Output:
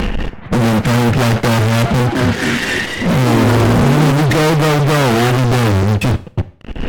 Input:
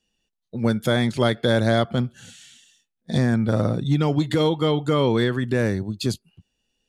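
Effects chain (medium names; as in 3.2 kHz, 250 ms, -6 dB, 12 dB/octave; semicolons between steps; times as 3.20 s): steep low-pass 2.2 kHz 36 dB/octave; bass shelf 140 Hz +11.5 dB; upward compressor, threshold -19 dBFS; fuzz box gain 43 dB, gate -47 dBFS; 1.85–4.12 s: frequency-shifting echo 211 ms, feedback 31%, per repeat +130 Hz, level -4 dB; Schroeder reverb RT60 0.45 s, combs from 30 ms, DRR 15.5 dB; trim +2 dB; AAC 64 kbps 48 kHz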